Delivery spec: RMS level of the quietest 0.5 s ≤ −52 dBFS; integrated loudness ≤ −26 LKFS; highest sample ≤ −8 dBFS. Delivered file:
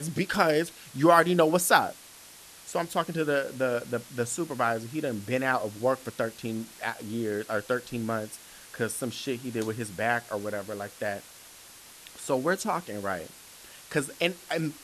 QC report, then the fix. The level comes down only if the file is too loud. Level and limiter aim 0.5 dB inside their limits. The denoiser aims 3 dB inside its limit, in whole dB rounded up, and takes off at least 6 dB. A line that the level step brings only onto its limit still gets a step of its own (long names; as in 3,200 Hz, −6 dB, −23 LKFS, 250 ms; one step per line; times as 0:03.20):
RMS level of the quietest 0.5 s −50 dBFS: out of spec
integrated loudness −28.5 LKFS: in spec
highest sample −6.0 dBFS: out of spec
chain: broadband denoise 6 dB, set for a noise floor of −50 dBFS
brickwall limiter −8.5 dBFS